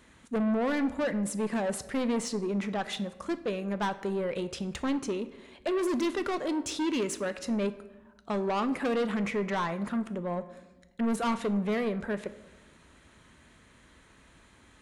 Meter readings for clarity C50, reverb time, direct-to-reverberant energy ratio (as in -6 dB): 15.0 dB, 1.1 s, 11.0 dB